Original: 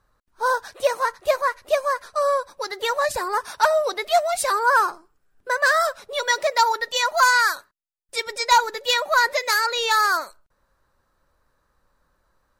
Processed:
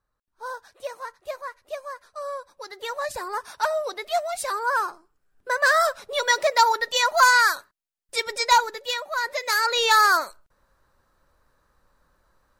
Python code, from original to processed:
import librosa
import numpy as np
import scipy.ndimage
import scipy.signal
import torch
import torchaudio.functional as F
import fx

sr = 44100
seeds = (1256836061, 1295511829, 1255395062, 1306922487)

y = fx.gain(x, sr, db=fx.line((2.09, -13.0), (3.21, -6.0), (4.9, -6.0), (5.84, 0.5), (8.43, 0.5), (9.11, -10.0), (9.77, 2.0)))